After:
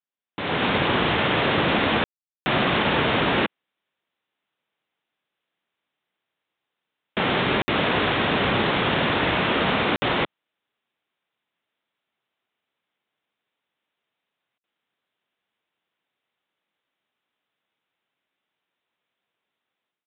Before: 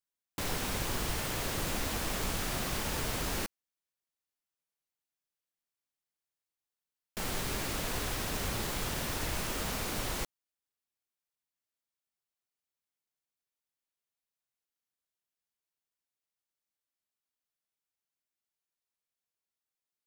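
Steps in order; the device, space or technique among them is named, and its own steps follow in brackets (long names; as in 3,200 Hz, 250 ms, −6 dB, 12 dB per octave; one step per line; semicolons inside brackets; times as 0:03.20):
call with lost packets (high-pass filter 150 Hz 12 dB per octave; downsampling to 8,000 Hz; automatic gain control gain up to 16.5 dB; dropped packets of 60 ms bursts)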